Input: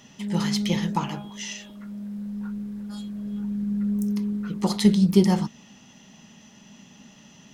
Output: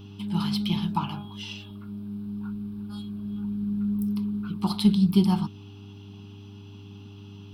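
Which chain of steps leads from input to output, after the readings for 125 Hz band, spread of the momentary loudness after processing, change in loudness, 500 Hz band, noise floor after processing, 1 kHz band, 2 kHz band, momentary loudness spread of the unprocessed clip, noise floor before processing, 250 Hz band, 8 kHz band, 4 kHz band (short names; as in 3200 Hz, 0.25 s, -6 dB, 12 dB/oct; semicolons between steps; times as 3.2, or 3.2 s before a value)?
-1.0 dB, 23 LU, -2.0 dB, -9.0 dB, -44 dBFS, -1.5 dB, n/a, 16 LU, -52 dBFS, -2.0 dB, under -10 dB, -1.5 dB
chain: fixed phaser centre 1900 Hz, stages 6; buzz 100 Hz, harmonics 4, -44 dBFS -6 dB/oct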